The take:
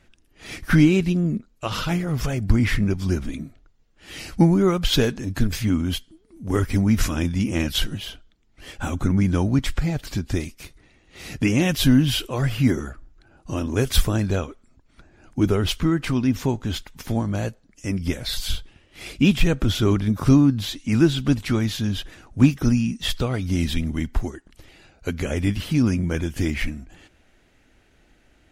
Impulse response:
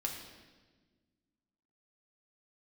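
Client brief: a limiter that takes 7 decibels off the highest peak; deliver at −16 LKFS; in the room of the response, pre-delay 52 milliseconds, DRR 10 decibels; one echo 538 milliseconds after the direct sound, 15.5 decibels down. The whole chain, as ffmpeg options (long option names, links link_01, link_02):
-filter_complex "[0:a]alimiter=limit=-10.5dB:level=0:latency=1,aecho=1:1:538:0.168,asplit=2[link_01][link_02];[1:a]atrim=start_sample=2205,adelay=52[link_03];[link_02][link_03]afir=irnorm=-1:irlink=0,volume=-11.5dB[link_04];[link_01][link_04]amix=inputs=2:normalize=0,volume=7dB"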